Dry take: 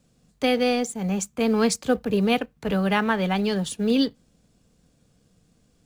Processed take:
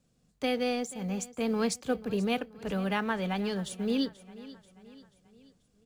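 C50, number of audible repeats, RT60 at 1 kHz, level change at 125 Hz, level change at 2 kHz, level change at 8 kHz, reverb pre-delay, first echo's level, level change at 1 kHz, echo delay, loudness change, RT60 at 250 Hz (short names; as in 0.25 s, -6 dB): none, 3, none, -8.0 dB, -8.0 dB, -8.0 dB, none, -18.0 dB, -8.0 dB, 0.485 s, -8.0 dB, none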